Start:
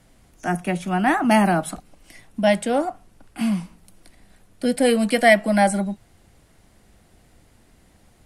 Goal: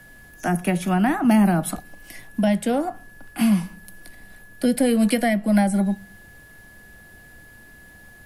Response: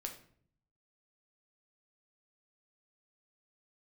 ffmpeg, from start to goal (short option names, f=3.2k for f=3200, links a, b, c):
-filter_complex "[0:a]aexciter=amount=4.9:drive=1.5:freq=11k,aeval=exprs='val(0)+0.00282*sin(2*PI*1700*n/s)':c=same,acrossover=split=270[a][b];[b]acompressor=threshold=-26dB:ratio=8[c];[a][c]amix=inputs=2:normalize=0,asplit=2[d][e];[1:a]atrim=start_sample=2205,asetrate=70560,aresample=44100[f];[e][f]afir=irnorm=-1:irlink=0,volume=-9dB[g];[d][g]amix=inputs=2:normalize=0,volume=3dB"